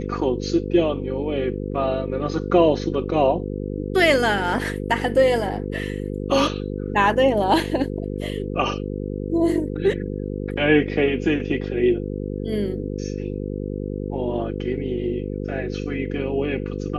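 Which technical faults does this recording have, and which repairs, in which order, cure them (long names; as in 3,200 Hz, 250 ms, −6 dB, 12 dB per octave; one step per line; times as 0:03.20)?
mains buzz 50 Hz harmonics 10 −28 dBFS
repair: hum removal 50 Hz, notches 10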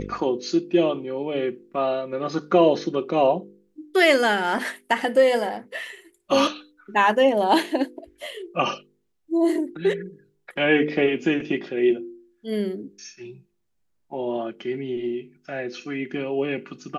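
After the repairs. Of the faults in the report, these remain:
none of them is left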